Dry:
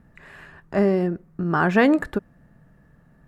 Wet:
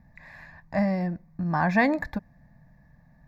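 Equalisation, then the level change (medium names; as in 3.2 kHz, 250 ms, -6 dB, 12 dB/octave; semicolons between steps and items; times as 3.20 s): static phaser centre 2 kHz, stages 8; 0.0 dB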